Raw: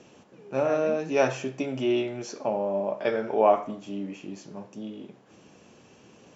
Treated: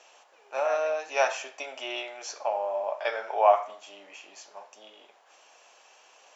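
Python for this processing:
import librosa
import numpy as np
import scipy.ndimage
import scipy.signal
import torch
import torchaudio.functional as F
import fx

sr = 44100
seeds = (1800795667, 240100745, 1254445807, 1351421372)

y = scipy.signal.sosfilt(scipy.signal.cheby1(3, 1.0, 700.0, 'highpass', fs=sr, output='sos'), x)
y = y * librosa.db_to_amplitude(3.0)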